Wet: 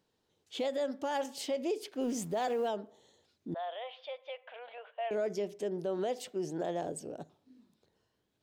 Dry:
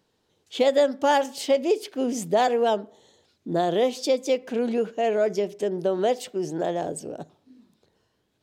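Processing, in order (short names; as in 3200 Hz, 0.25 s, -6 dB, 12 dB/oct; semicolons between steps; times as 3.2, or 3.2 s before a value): 2.01–2.68 G.711 law mismatch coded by mu; limiter -18 dBFS, peak gain reduction 8.5 dB; 3.54–5.11 Chebyshev band-pass 590–3400 Hz, order 4; gain -7.5 dB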